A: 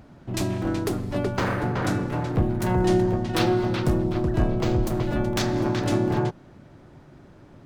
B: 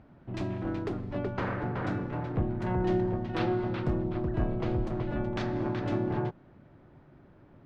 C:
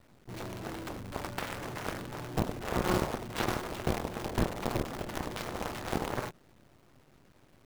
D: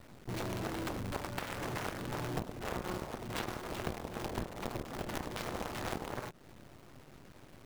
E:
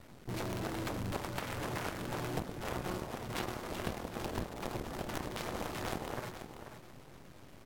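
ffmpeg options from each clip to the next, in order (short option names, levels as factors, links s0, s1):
-af "lowpass=2700,volume=0.447"
-af "acrusher=bits=7:dc=4:mix=0:aa=0.000001,aeval=exprs='0.2*(cos(1*acos(clip(val(0)/0.2,-1,1)))-cos(1*PI/2))+0.0501*(cos(7*acos(clip(val(0)/0.2,-1,1)))-cos(7*PI/2))':c=same"
-af "acompressor=threshold=0.00891:ratio=6,volume=2"
-af "aecho=1:1:488|976|1464:0.335|0.077|0.0177" -ar 48000 -c:a libvorbis -b:a 64k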